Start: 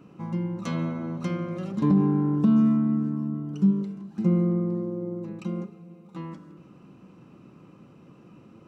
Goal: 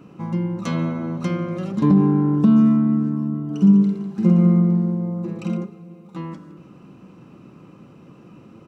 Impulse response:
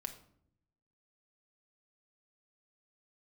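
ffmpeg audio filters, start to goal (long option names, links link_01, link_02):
-filter_complex "[0:a]asplit=3[link_01][link_02][link_03];[link_01]afade=type=out:start_time=3.49:duration=0.02[link_04];[link_02]aecho=1:1:50|115|199.5|309.4|452.2:0.631|0.398|0.251|0.158|0.1,afade=type=in:start_time=3.49:duration=0.02,afade=type=out:start_time=5.56:duration=0.02[link_05];[link_03]afade=type=in:start_time=5.56:duration=0.02[link_06];[link_04][link_05][link_06]amix=inputs=3:normalize=0,volume=5.5dB"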